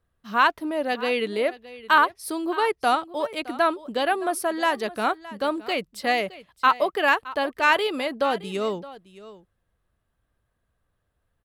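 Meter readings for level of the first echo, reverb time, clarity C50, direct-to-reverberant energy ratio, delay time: −17.5 dB, no reverb audible, no reverb audible, no reverb audible, 617 ms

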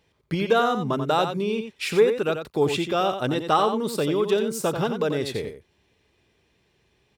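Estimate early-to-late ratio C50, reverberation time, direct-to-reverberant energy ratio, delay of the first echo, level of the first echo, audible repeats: no reverb audible, no reverb audible, no reverb audible, 89 ms, −8.0 dB, 1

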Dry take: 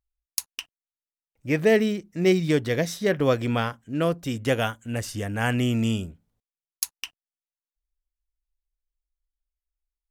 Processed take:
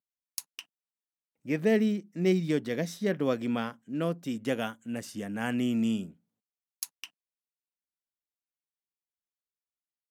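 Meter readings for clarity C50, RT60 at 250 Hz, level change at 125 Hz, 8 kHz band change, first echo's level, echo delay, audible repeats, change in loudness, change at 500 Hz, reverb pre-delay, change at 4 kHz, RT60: no reverb audible, no reverb audible, −8.5 dB, −8.5 dB, no echo audible, no echo audible, no echo audible, −5.5 dB, −7.0 dB, no reverb audible, −8.5 dB, no reverb audible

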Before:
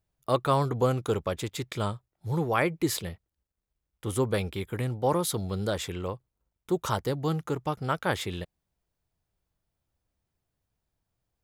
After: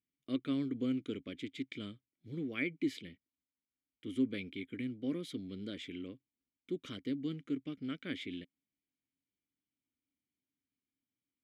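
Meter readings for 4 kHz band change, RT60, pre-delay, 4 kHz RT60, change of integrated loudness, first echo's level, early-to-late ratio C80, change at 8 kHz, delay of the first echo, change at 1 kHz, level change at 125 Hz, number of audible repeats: −10.0 dB, no reverb audible, no reverb audible, no reverb audible, −10.0 dB, no echo audible, no reverb audible, below −20 dB, no echo audible, −28.0 dB, −17.0 dB, no echo audible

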